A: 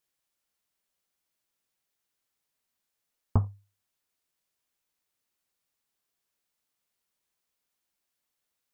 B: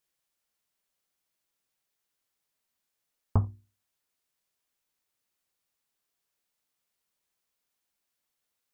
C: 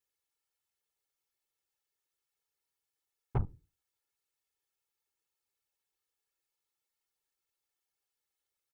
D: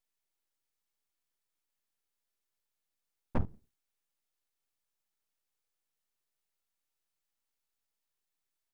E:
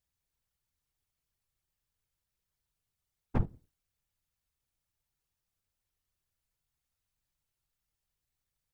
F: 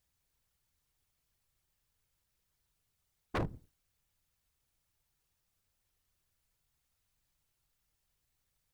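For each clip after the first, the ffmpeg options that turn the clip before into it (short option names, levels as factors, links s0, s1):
-af "bandreject=f=60:t=h:w=6,bandreject=f=120:t=h:w=6,bandreject=f=180:t=h:w=6,bandreject=f=240:t=h:w=6,bandreject=f=300:t=h:w=6,bandreject=f=360:t=h:w=6"
-af "afftfilt=real='hypot(re,im)*cos(2*PI*random(0))':imag='hypot(re,im)*sin(2*PI*random(1))':win_size=512:overlap=0.75,aecho=1:1:2.3:0.75,aeval=exprs='0.141*(cos(1*acos(clip(val(0)/0.141,-1,1)))-cos(1*PI/2))+0.0158*(cos(8*acos(clip(val(0)/0.141,-1,1)))-cos(8*PI/2))':c=same,volume=0.794"
-af "aeval=exprs='abs(val(0))':c=same,volume=1.26"
-af "afftfilt=real='hypot(re,im)*cos(2*PI*random(0))':imag='hypot(re,im)*sin(2*PI*random(1))':win_size=512:overlap=0.75,volume=2.11"
-af "aeval=exprs='0.0224*(abs(mod(val(0)/0.0224+3,4)-2)-1)':c=same,volume=1.88"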